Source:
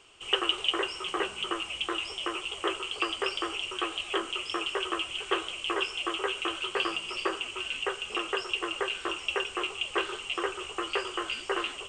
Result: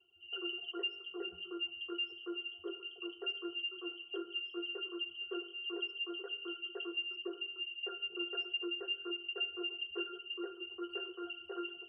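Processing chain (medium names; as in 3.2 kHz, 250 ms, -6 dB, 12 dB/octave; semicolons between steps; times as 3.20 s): resonances exaggerated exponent 3; pitch-class resonator F, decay 0.17 s; Schroeder reverb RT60 0.85 s, DRR 14 dB; trim +2.5 dB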